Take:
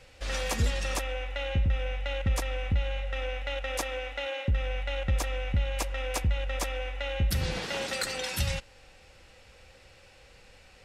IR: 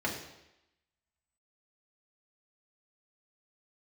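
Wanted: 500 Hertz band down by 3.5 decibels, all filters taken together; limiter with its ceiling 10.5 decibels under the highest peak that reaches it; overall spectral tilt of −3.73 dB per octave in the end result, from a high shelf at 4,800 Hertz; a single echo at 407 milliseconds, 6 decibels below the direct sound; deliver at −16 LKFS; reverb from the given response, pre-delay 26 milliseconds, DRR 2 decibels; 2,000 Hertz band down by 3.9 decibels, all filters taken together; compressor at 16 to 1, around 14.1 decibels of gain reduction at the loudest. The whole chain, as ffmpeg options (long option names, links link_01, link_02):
-filter_complex "[0:a]equalizer=frequency=500:width_type=o:gain=-3.5,equalizer=frequency=2000:width_type=o:gain=-6.5,highshelf=frequency=4800:gain=7,acompressor=threshold=-36dB:ratio=16,alimiter=level_in=8.5dB:limit=-24dB:level=0:latency=1,volume=-8.5dB,aecho=1:1:407:0.501,asplit=2[link_01][link_02];[1:a]atrim=start_sample=2205,adelay=26[link_03];[link_02][link_03]afir=irnorm=-1:irlink=0,volume=-9.5dB[link_04];[link_01][link_04]amix=inputs=2:normalize=0,volume=24.5dB"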